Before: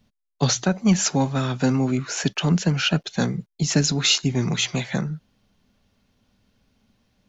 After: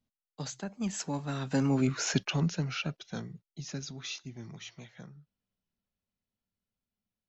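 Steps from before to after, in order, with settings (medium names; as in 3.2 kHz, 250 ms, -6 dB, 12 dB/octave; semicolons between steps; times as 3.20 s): Doppler pass-by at 1.94 s, 20 m/s, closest 5.7 m; trim -3.5 dB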